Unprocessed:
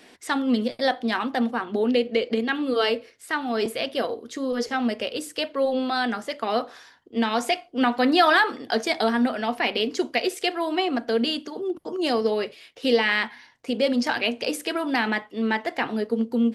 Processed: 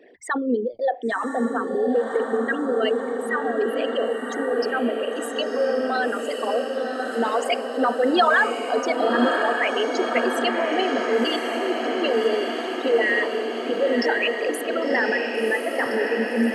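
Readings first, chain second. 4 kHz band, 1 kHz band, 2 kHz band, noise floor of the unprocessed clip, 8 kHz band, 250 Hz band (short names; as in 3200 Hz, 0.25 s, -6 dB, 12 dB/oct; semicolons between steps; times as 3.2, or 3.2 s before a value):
-2.0 dB, +1.5 dB, +2.5 dB, -53 dBFS, 0.0 dB, -1.0 dB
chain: formant sharpening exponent 3; diffused feedback echo 1.088 s, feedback 72%, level -4.5 dB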